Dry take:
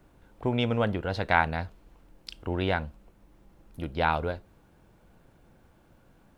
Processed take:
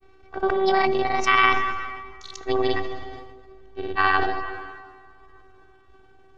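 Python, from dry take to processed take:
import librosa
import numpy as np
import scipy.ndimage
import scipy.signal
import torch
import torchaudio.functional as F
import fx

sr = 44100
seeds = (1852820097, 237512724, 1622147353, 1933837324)

p1 = fx.pitch_glide(x, sr, semitones=7.5, runs='ending unshifted')
p2 = scipy.signal.sosfilt(scipy.signal.butter(2, 4800.0, 'lowpass', fs=sr, output='sos'), p1)
p3 = fx.level_steps(p2, sr, step_db=16)
p4 = p2 + (p3 * librosa.db_to_amplitude(-0.5))
p5 = fx.robotise(p4, sr, hz=383.0)
p6 = fx.granulator(p5, sr, seeds[0], grain_ms=100.0, per_s=20.0, spray_ms=100.0, spread_st=0)
p7 = fx.rev_plate(p6, sr, seeds[1], rt60_s=3.2, hf_ratio=0.65, predelay_ms=0, drr_db=15.0)
p8 = fx.sustainer(p7, sr, db_per_s=37.0)
y = p8 * librosa.db_to_amplitude(5.5)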